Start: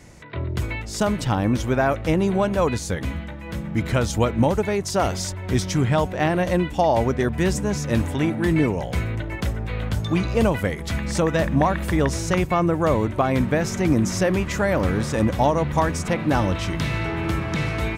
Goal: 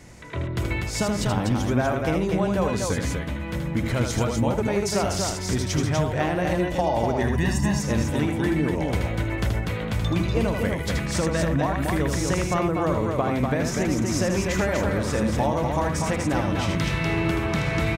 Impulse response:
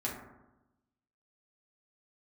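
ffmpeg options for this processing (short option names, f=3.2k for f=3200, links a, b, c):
-filter_complex "[0:a]asettb=1/sr,asplit=3[a][b][c];[a]atrim=end=7.214[d];[b]atrim=start=7.21:end=7.79,asetpts=PTS-STARTPTS,afade=t=in:d=0.004:c=qsin,afade=t=out:st=0.576:d=0.004:c=qsin,aecho=1:1:1.1:0.87,atrim=end_sample=25578[e];[c]atrim=start=7.786[f];[d][e]acrossfade=d=0.004:c1=hsin:c2=qsin[g];[g][f]acrossfade=d=0.004:c1=qsin:c2=hsin,acompressor=threshold=-21dB:ratio=6,aecho=1:1:78.72|244.9:0.562|0.631"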